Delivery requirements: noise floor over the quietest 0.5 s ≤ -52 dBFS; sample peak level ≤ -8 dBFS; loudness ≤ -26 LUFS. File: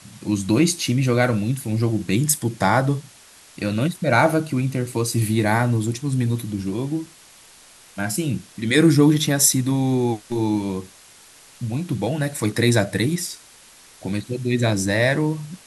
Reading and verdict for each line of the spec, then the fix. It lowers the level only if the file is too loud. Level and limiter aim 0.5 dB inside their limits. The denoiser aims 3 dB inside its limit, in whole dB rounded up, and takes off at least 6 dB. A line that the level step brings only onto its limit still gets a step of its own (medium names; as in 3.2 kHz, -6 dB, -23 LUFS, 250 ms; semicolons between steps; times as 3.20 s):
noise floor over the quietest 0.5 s -48 dBFS: fail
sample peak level -2.5 dBFS: fail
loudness -21.0 LUFS: fail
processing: trim -5.5 dB; peak limiter -8.5 dBFS